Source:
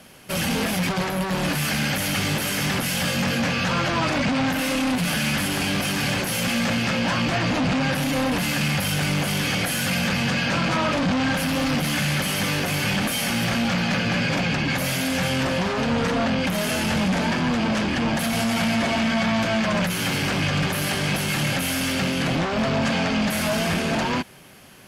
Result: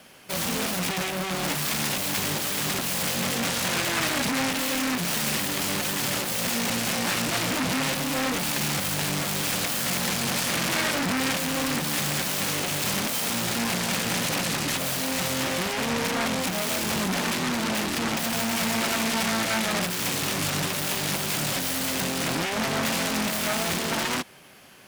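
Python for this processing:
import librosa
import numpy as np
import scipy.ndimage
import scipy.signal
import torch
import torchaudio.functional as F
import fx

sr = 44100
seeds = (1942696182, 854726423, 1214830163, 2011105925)

y = fx.self_delay(x, sr, depth_ms=0.55)
y = fx.low_shelf(y, sr, hz=220.0, db=-8.5)
y = y * 10.0 ** (-1.0 / 20.0)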